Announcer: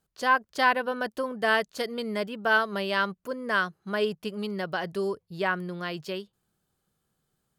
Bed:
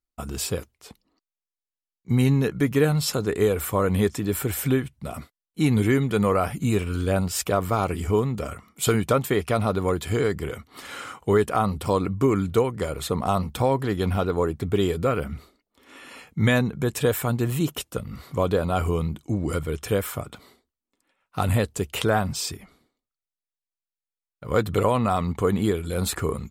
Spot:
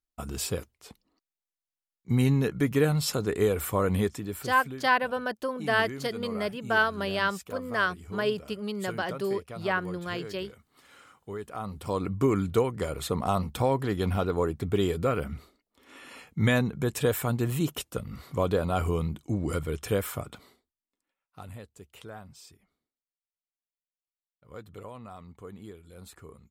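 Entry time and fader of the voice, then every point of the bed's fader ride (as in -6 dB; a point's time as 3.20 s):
4.25 s, -1.0 dB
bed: 3.94 s -3.5 dB
4.74 s -18 dB
11.37 s -18 dB
12.15 s -3.5 dB
20.37 s -3.5 dB
21.55 s -22 dB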